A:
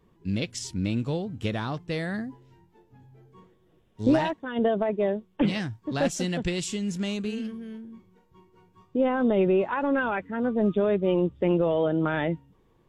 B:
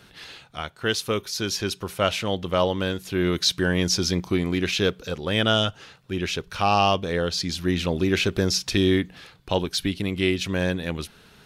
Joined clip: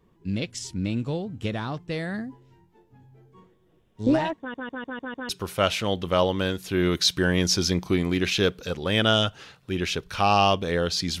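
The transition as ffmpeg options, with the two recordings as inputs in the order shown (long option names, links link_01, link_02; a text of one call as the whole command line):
ffmpeg -i cue0.wav -i cue1.wav -filter_complex "[0:a]apad=whole_dur=11.2,atrim=end=11.2,asplit=6[link_01][link_02][link_03][link_04][link_05][link_06];[link_01]atrim=end=4.542[link_07];[link_02]atrim=start=4.388:end=4.542[link_08];[link_03]atrim=start=4.388:end=4.542[link_09];[link_04]atrim=start=4.388:end=4.542[link_10];[link_05]atrim=start=4.388:end=4.542[link_11];[link_06]atrim=start=4.388:end=4.542[link_12];[1:a]atrim=start=1.698:end=7.61[link_13];[link_07][link_08]acrossfade=duration=0.004:curve1=hsin:curve2=hsin[link_14];[link_14][link_09]acrossfade=duration=0.004:curve1=hsin:curve2=hsin[link_15];[link_15][link_10]acrossfade=duration=0.004:curve1=hsin:curve2=hsin[link_16];[link_16][link_11]acrossfade=duration=0.004:curve1=hsin:curve2=hsin[link_17];[link_17][link_12]acrossfade=duration=0.004:curve1=hsin:curve2=hsin[link_18];[link_18][link_13]acrossfade=duration=0.004:curve1=hsin:curve2=hsin" out.wav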